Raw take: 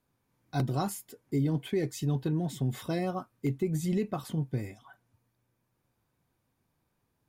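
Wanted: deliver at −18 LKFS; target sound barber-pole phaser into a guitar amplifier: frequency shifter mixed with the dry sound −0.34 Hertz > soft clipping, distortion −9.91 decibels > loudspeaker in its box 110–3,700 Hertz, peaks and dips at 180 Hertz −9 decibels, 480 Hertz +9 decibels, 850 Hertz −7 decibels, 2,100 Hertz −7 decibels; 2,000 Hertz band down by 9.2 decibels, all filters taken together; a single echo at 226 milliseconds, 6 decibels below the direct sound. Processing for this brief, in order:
parametric band 2,000 Hz −9 dB
single-tap delay 226 ms −6 dB
frequency shifter mixed with the dry sound −0.34 Hz
soft clipping −33 dBFS
loudspeaker in its box 110–3,700 Hz, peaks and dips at 180 Hz −9 dB, 480 Hz +9 dB, 850 Hz −7 dB, 2,100 Hz −7 dB
level +23 dB

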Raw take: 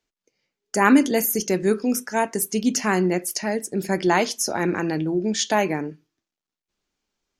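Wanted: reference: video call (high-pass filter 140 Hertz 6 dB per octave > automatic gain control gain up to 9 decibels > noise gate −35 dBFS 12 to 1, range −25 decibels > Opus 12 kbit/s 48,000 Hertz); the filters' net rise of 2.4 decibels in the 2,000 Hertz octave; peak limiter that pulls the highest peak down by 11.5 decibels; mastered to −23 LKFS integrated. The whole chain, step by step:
parametric band 2,000 Hz +3 dB
brickwall limiter −13.5 dBFS
high-pass filter 140 Hz 6 dB per octave
automatic gain control gain up to 9 dB
noise gate −35 dBFS 12 to 1, range −25 dB
level +3 dB
Opus 12 kbit/s 48,000 Hz

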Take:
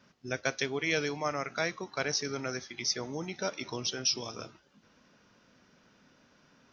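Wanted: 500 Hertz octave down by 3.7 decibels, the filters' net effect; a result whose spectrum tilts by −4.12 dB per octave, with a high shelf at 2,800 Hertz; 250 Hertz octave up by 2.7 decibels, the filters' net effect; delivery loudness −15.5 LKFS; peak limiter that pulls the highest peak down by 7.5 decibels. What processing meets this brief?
parametric band 250 Hz +5.5 dB
parametric band 500 Hz −6 dB
high-shelf EQ 2,800 Hz −9 dB
level +23 dB
brickwall limiter −3.5 dBFS

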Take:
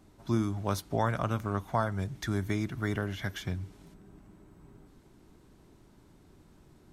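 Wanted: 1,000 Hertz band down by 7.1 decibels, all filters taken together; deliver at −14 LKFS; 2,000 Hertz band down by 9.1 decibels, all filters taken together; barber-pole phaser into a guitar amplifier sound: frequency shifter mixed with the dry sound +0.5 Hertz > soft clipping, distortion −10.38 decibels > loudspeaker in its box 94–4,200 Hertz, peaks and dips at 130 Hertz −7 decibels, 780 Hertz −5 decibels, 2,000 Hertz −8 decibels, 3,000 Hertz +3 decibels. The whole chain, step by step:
parametric band 1,000 Hz −4.5 dB
parametric band 2,000 Hz −7.5 dB
frequency shifter mixed with the dry sound +0.5 Hz
soft clipping −33.5 dBFS
loudspeaker in its box 94–4,200 Hz, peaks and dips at 130 Hz −7 dB, 780 Hz −5 dB, 2,000 Hz −8 dB, 3,000 Hz +3 dB
level +29.5 dB

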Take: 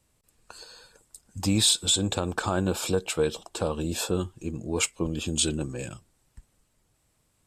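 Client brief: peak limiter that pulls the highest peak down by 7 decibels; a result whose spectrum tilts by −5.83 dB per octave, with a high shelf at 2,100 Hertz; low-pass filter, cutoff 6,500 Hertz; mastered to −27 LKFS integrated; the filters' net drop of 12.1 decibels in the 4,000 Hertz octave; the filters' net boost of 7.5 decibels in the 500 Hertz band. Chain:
low-pass filter 6,500 Hz
parametric band 500 Hz +9 dB
high-shelf EQ 2,100 Hz −5.5 dB
parametric band 4,000 Hz −9 dB
level +1 dB
brickwall limiter −13 dBFS

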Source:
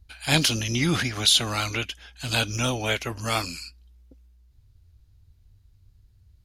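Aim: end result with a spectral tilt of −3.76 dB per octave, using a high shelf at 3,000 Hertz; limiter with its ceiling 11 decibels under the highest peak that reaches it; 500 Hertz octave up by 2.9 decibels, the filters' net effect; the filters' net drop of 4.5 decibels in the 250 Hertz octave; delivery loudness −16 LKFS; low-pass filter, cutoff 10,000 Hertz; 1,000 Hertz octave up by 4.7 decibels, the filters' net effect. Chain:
low-pass filter 10,000 Hz
parametric band 250 Hz −8.5 dB
parametric band 500 Hz +4 dB
parametric band 1,000 Hz +6.5 dB
high-shelf EQ 3,000 Hz −5 dB
level +13 dB
brickwall limiter −4 dBFS

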